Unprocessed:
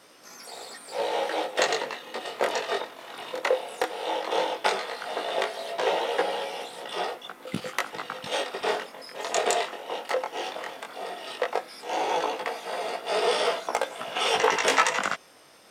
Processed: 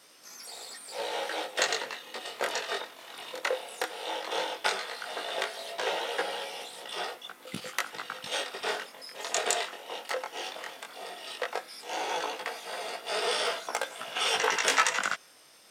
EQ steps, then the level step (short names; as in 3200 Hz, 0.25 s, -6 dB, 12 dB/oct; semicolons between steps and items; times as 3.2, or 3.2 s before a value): dynamic EQ 1500 Hz, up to +5 dB, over -43 dBFS, Q 3.6; high shelf 2100 Hz +9.5 dB; -8.0 dB